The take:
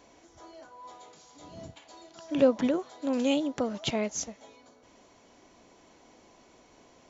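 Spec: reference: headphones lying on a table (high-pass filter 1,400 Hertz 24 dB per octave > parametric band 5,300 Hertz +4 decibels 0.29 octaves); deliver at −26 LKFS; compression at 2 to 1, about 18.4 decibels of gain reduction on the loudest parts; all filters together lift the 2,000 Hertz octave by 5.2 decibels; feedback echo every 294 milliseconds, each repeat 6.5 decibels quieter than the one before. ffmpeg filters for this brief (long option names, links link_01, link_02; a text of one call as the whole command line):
ffmpeg -i in.wav -af "equalizer=frequency=2000:width_type=o:gain=7,acompressor=threshold=-51dB:ratio=2,highpass=frequency=1400:width=0.5412,highpass=frequency=1400:width=1.3066,equalizer=frequency=5300:width_type=o:width=0.29:gain=4,aecho=1:1:294|588|882|1176|1470|1764:0.473|0.222|0.105|0.0491|0.0231|0.0109,volume=25.5dB" out.wav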